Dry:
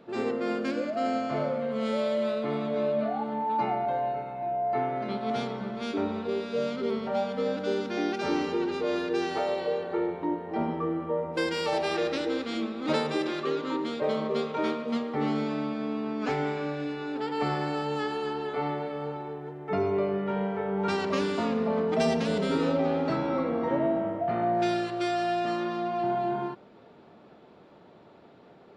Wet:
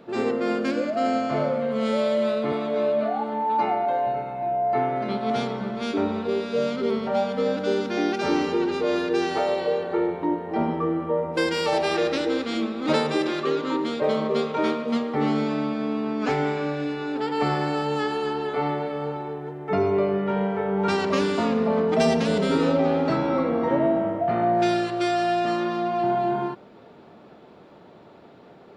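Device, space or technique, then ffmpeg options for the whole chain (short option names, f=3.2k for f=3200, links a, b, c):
exciter from parts: -filter_complex "[0:a]asettb=1/sr,asplit=3[a][b][c];[a]atrim=end=2.524[d];[b]atrim=start=2.52:end=4.07,asetpts=PTS-STARTPTS,afade=t=in:d=0.004:c=qsin,afade=t=out:st=1.546:d=0.004:c=qsin,highpass=240[e];[c]atrim=start=4.066[f];[d][e]acrossfade=d=0.004:c1=hsin:c2=qsin[g];[g][f]acrossfade=d=0.004:c1=qsin:c2=hsin,asplit=2[h][i];[i]highpass=4.8k,asoftclip=type=tanh:threshold=-34dB,volume=-14dB[j];[h][j]amix=inputs=2:normalize=0,volume=5dB"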